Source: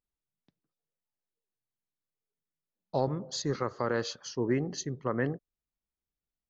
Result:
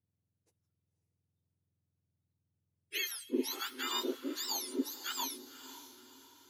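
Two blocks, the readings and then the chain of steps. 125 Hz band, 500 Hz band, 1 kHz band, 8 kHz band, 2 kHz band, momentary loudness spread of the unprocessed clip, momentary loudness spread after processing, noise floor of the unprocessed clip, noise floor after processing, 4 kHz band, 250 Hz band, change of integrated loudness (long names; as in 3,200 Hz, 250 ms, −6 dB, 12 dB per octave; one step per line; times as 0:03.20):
below −35 dB, −10.5 dB, −6.0 dB, can't be measured, −2.0 dB, 5 LU, 16 LU, below −85 dBFS, −85 dBFS, +4.5 dB, −5.0 dB, −4.0 dB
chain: frequency axis turned over on the octave scale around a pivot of 1,300 Hz
feedback delay with all-pass diffusion 528 ms, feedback 44%, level −13 dB
level −2 dB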